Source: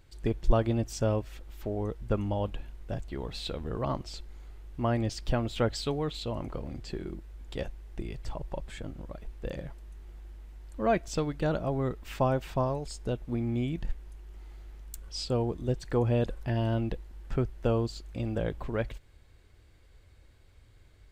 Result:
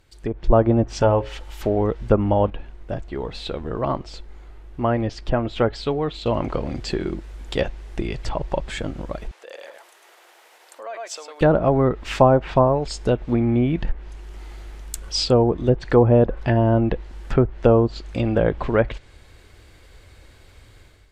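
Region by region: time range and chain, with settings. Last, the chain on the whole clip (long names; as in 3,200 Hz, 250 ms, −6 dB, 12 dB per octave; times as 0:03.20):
0:01.02–0:01.61: parametric band 230 Hz −7 dB 1.3 octaves + mains-hum notches 60/120/180/240/300/360/420/480/540/600 Hz + hollow resonant body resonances 880/3,000 Hz, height 13 dB, ringing for 90 ms
0:02.50–0:06.26: high-shelf EQ 3,100 Hz −11 dB + flanger 1.2 Hz, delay 1.9 ms, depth 1.4 ms, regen +85%
0:09.31–0:11.41: single-tap delay 104 ms −4 dB + downward compressor 16 to 1, threshold −40 dBFS + high-pass filter 520 Hz 24 dB per octave
whole clip: treble cut that deepens with the level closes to 1,100 Hz, closed at −24 dBFS; low-shelf EQ 240 Hz −6.5 dB; automatic gain control gain up to 11 dB; level +4 dB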